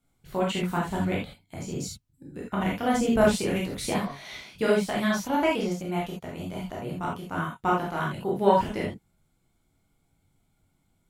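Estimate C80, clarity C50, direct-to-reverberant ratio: 11.0 dB, 4.0 dB, -4.5 dB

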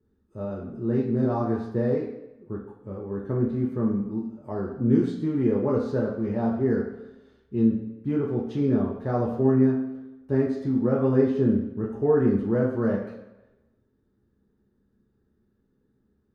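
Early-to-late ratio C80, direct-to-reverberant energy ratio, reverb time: 8.0 dB, -2.0 dB, 0.95 s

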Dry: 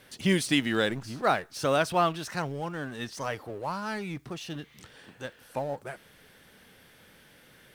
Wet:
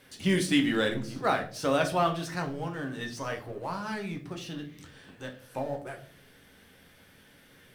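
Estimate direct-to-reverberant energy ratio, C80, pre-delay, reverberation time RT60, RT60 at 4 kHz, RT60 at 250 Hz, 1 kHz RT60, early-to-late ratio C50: 3.0 dB, 16.0 dB, 7 ms, 0.50 s, 0.35 s, 0.80 s, 0.40 s, 12.0 dB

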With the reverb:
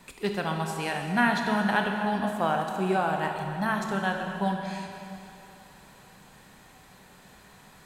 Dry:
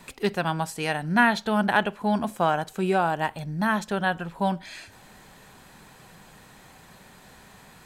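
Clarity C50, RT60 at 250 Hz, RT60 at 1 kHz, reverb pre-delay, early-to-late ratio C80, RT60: 3.5 dB, 2.7 s, 3.0 s, 7 ms, 4.0 dB, 3.0 s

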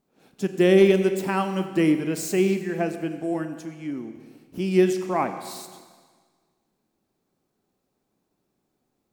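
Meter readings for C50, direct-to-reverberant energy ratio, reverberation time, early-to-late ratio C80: 9.5 dB, 8.5 dB, 1.6 s, 10.5 dB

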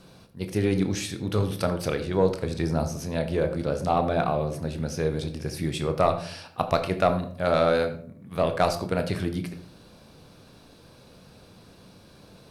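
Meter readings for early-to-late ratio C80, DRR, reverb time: 14.0 dB, 7.0 dB, not exponential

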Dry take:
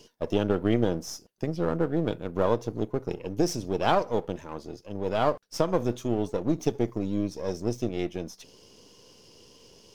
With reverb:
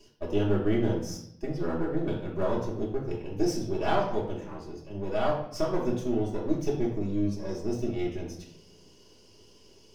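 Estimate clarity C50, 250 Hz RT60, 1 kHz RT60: 5.5 dB, 1.0 s, 0.60 s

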